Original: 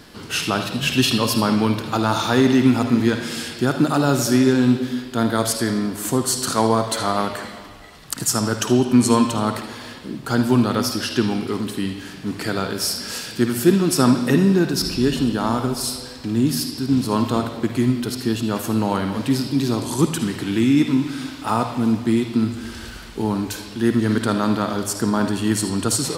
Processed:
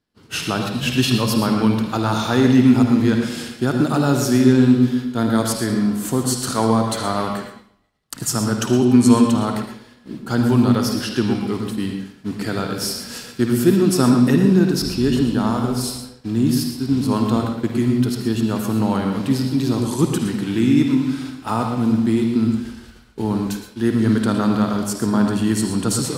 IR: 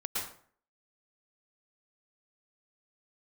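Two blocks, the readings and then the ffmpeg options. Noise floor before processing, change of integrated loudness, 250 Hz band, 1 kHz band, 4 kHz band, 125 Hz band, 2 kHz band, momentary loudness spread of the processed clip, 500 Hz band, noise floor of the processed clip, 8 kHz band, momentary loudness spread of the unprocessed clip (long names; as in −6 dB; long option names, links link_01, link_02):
−37 dBFS, +1.5 dB, +2.5 dB, −1.0 dB, −2.0 dB, +3.0 dB, −1.5 dB, 11 LU, 0.0 dB, −47 dBFS, −2.0 dB, 10 LU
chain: -filter_complex "[0:a]agate=range=-33dB:threshold=-26dB:ratio=3:detection=peak,asplit=2[link_01][link_02];[1:a]atrim=start_sample=2205,afade=type=out:start_time=0.19:duration=0.01,atrim=end_sample=8820,lowshelf=frequency=450:gain=10.5[link_03];[link_02][link_03]afir=irnorm=-1:irlink=0,volume=-8dB[link_04];[link_01][link_04]amix=inputs=2:normalize=0,volume=-4.5dB"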